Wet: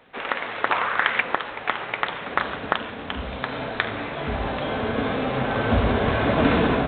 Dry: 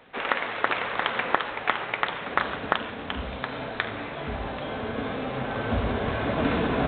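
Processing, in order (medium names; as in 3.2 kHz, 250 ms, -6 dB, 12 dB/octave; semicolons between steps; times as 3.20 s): 0.70–1.20 s: peaking EQ 890 Hz -> 2.3 kHz +10.5 dB 0.97 oct; level rider gain up to 7 dB; trim -1 dB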